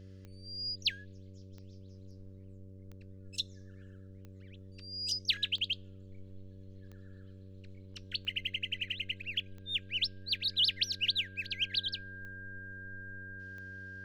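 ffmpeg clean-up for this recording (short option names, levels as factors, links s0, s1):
-af "adeclick=t=4,bandreject=f=95.4:t=h:w=4,bandreject=f=190.8:t=h:w=4,bandreject=f=286.2:t=h:w=4,bandreject=f=381.6:t=h:w=4,bandreject=f=477:t=h:w=4,bandreject=f=572.4:t=h:w=4,bandreject=f=1600:w=30"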